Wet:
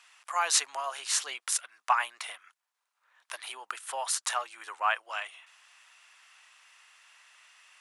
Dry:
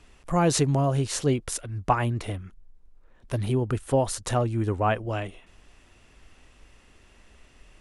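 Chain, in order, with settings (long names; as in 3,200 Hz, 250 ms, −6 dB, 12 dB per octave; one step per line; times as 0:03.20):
high-pass filter 1,000 Hz 24 dB per octave
level +3 dB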